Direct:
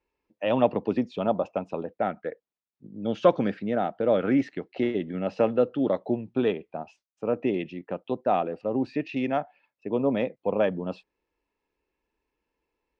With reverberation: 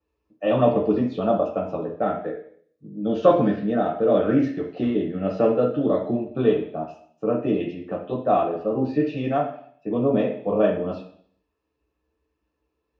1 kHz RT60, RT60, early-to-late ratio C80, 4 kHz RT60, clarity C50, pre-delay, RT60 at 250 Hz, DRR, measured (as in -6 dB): 0.55 s, 0.60 s, 10.5 dB, 0.65 s, 7.0 dB, 3 ms, 0.65 s, -3.0 dB